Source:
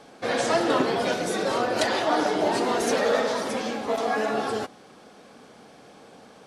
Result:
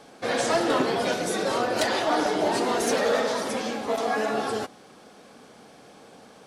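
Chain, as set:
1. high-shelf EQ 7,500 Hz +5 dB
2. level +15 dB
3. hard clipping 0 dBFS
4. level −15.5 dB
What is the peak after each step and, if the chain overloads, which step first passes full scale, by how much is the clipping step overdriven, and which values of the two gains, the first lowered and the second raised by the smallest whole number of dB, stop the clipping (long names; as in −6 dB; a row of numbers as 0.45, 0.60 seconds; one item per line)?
−7.5, +7.5, 0.0, −15.5 dBFS
step 2, 7.5 dB
step 2 +7 dB, step 4 −7.5 dB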